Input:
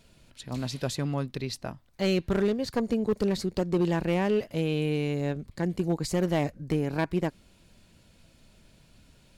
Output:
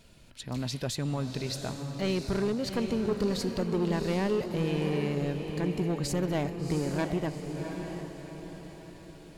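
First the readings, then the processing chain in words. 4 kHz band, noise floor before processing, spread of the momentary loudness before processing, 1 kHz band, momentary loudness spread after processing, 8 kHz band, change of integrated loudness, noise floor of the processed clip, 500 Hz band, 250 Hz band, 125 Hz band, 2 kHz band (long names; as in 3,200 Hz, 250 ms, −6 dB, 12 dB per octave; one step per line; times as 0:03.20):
0.0 dB, −60 dBFS, 8 LU, −2.0 dB, 14 LU, +1.0 dB, −2.0 dB, −50 dBFS, −2.5 dB, −1.5 dB, −1.0 dB, −2.5 dB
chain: in parallel at −1 dB: brickwall limiter −26.5 dBFS, peak gain reduction 8.5 dB
on the sum: soft clipping −18.5 dBFS, distortion −17 dB
feedback delay with all-pass diffusion 739 ms, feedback 45%, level −6 dB
level −4 dB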